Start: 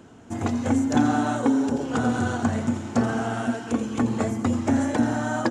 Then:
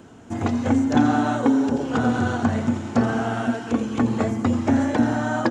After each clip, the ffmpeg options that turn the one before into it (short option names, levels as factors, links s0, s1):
-filter_complex "[0:a]acrossover=split=5900[s0][s1];[s1]acompressor=threshold=0.00141:ratio=4:attack=1:release=60[s2];[s0][s2]amix=inputs=2:normalize=0,volume=1.33"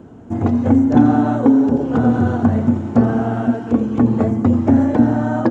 -af "tiltshelf=f=1300:g=9,volume=0.841"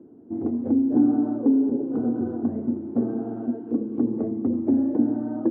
-af "bandpass=f=330:t=q:w=2.9:csg=0,volume=0.708"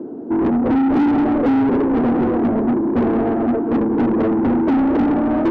-filter_complex "[0:a]asplit=2[s0][s1];[s1]highpass=f=720:p=1,volume=44.7,asoftclip=type=tanh:threshold=0.355[s2];[s0][s2]amix=inputs=2:normalize=0,lowpass=f=1100:p=1,volume=0.501"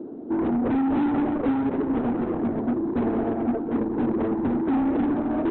-af "volume=0.501" -ar 48000 -c:a libopus -b:a 8k